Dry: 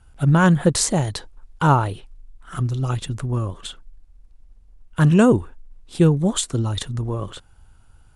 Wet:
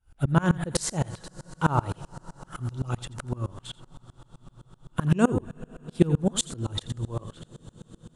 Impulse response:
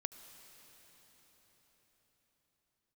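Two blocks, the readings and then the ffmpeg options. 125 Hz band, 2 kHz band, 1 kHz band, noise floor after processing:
-8.0 dB, -8.5 dB, -8.0 dB, -61 dBFS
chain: -filter_complex "[0:a]asplit=2[a][b];[1:a]atrim=start_sample=2205,asetrate=24255,aresample=44100,adelay=85[c];[b][c]afir=irnorm=-1:irlink=0,volume=-11.5dB[d];[a][d]amix=inputs=2:normalize=0,aeval=exprs='val(0)*pow(10,-27*if(lt(mod(-7.8*n/s,1),2*abs(-7.8)/1000),1-mod(-7.8*n/s,1)/(2*abs(-7.8)/1000),(mod(-7.8*n/s,1)-2*abs(-7.8)/1000)/(1-2*abs(-7.8)/1000))/20)':c=same"

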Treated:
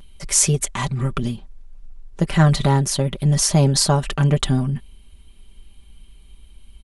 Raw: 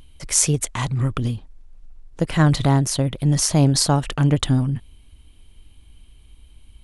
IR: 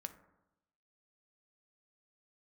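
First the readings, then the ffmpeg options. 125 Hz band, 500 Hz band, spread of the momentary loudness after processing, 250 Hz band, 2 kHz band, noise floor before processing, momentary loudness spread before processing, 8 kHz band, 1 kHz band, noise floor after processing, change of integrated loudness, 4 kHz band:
+0.5 dB, +2.0 dB, 10 LU, -0.5 dB, +1.0 dB, -50 dBFS, 10 LU, +1.5 dB, +1.5 dB, -47 dBFS, +1.0 dB, +1.5 dB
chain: -af "aecho=1:1:5.1:0.67"

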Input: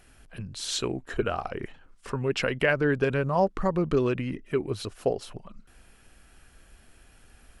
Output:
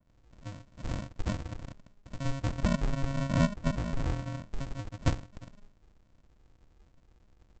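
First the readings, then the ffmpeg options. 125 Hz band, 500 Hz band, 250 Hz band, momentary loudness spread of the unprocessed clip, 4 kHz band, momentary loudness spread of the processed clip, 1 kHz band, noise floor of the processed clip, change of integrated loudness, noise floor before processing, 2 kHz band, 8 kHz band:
+0.5 dB, -14.5 dB, -4.0 dB, 15 LU, -10.0 dB, 18 LU, -9.0 dB, -65 dBFS, -6.0 dB, -57 dBFS, -11.5 dB, -9.0 dB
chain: -filter_complex "[0:a]equalizer=f=125:t=o:w=1:g=5,equalizer=f=250:t=o:w=1:g=-7,equalizer=f=500:t=o:w=1:g=9,equalizer=f=2k:t=o:w=1:g=-5,acrossover=split=300|1600[a][b][c];[a]adelay=70[d];[c]adelay=220[e];[d][b][e]amix=inputs=3:normalize=0,aresample=16000,acrusher=samples=39:mix=1:aa=0.000001,aresample=44100,adynamicequalizer=threshold=0.00501:dfrequency=2500:dqfactor=0.7:tfrequency=2500:tqfactor=0.7:attack=5:release=100:ratio=0.375:range=2.5:mode=cutabove:tftype=highshelf,volume=-6.5dB"

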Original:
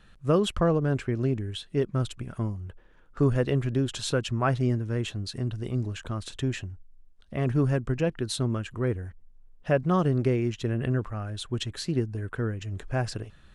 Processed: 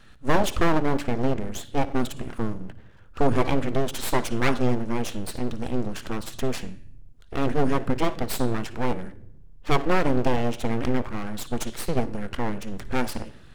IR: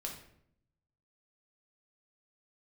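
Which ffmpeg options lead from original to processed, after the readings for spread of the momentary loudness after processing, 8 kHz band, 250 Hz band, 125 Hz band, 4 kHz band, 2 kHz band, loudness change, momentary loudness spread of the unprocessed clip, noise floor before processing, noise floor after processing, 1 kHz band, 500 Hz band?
10 LU, +4.0 dB, +2.0 dB, -4.0 dB, +0.5 dB, +5.5 dB, +1.0 dB, 10 LU, -54 dBFS, -46 dBFS, +7.5 dB, +1.5 dB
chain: -filter_complex "[0:a]asplit=2[a][b];[1:a]atrim=start_sample=2205,adelay=56[c];[b][c]afir=irnorm=-1:irlink=0,volume=-15.5dB[d];[a][d]amix=inputs=2:normalize=0,aeval=exprs='abs(val(0))':c=same,bandreject=f=287.2:t=h:w=4,bandreject=f=574.4:t=h:w=4,bandreject=f=861.6:t=h:w=4,bandreject=f=1.1488k:t=h:w=4,bandreject=f=1.436k:t=h:w=4,bandreject=f=1.7232k:t=h:w=4,bandreject=f=2.0104k:t=h:w=4,bandreject=f=2.2976k:t=h:w=4,bandreject=f=2.5848k:t=h:w=4,bandreject=f=2.872k:t=h:w=4,bandreject=f=3.1592k:t=h:w=4,bandreject=f=3.4464k:t=h:w=4,bandreject=f=3.7336k:t=h:w=4,bandreject=f=4.0208k:t=h:w=4,bandreject=f=4.308k:t=h:w=4,bandreject=f=4.5952k:t=h:w=4,bandreject=f=4.8824k:t=h:w=4,bandreject=f=5.1696k:t=h:w=4,bandreject=f=5.4568k:t=h:w=4,bandreject=f=5.744k:t=h:w=4,bandreject=f=6.0312k:t=h:w=4,bandreject=f=6.3184k:t=h:w=4,bandreject=f=6.6056k:t=h:w=4,bandreject=f=6.8928k:t=h:w=4,bandreject=f=7.18k:t=h:w=4,bandreject=f=7.4672k:t=h:w=4,bandreject=f=7.7544k:t=h:w=4,bandreject=f=8.0416k:t=h:w=4,bandreject=f=8.3288k:t=h:w=4,bandreject=f=8.616k:t=h:w=4,bandreject=f=8.9032k:t=h:w=4,bandreject=f=9.1904k:t=h:w=4,bandreject=f=9.4776k:t=h:w=4,bandreject=f=9.7648k:t=h:w=4,bandreject=f=10.052k:t=h:w=4,bandreject=f=10.3392k:t=h:w=4,bandreject=f=10.6264k:t=h:w=4,bandreject=f=10.9136k:t=h:w=4,volume=5.5dB"

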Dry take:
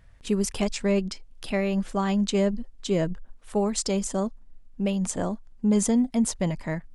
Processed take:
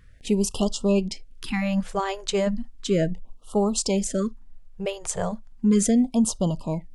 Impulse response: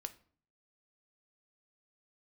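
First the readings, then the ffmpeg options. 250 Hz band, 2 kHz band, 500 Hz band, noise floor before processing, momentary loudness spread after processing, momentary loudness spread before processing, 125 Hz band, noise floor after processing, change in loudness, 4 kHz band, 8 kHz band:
+1.5 dB, +0.5 dB, +1.5 dB, -51 dBFS, 11 LU, 9 LU, +1.0 dB, -47 dBFS, +1.5 dB, +2.5 dB, +2.5 dB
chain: -filter_complex "[0:a]asplit=2[a][b];[1:a]atrim=start_sample=2205,atrim=end_sample=3528[c];[b][c]afir=irnorm=-1:irlink=0,volume=-6.5dB[d];[a][d]amix=inputs=2:normalize=0,afftfilt=real='re*(1-between(b*sr/1024,230*pow(2000/230,0.5+0.5*sin(2*PI*0.35*pts/sr))/1.41,230*pow(2000/230,0.5+0.5*sin(2*PI*0.35*pts/sr))*1.41))':imag='im*(1-between(b*sr/1024,230*pow(2000/230,0.5+0.5*sin(2*PI*0.35*pts/sr))/1.41,230*pow(2000/230,0.5+0.5*sin(2*PI*0.35*pts/sr))*1.41))':win_size=1024:overlap=0.75"

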